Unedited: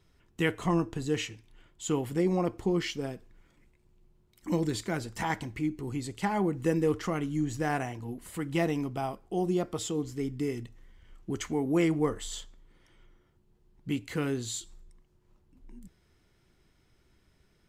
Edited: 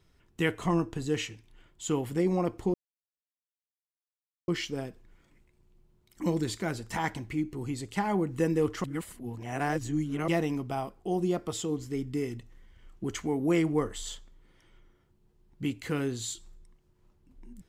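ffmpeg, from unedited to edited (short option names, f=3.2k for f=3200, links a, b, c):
-filter_complex "[0:a]asplit=4[a][b][c][d];[a]atrim=end=2.74,asetpts=PTS-STARTPTS,afade=t=out:st=2.736:d=0.004:c=hsin,apad=pad_dur=1.74[e];[b]atrim=start=2.74:end=7.102,asetpts=PTS-STARTPTS,afade=t=in:d=0.004:c=hsin[f];[c]atrim=start=7.098:end=8.542,asetpts=PTS-STARTPTS,areverse[g];[d]atrim=start=8.538[h];[e][f]concat=n=2:v=0:a=1[i];[i][g]acrossfade=d=0.004:c1=hsin:c2=hsin[j];[j][h]acrossfade=d=0.004:c1=hsin:c2=hsin"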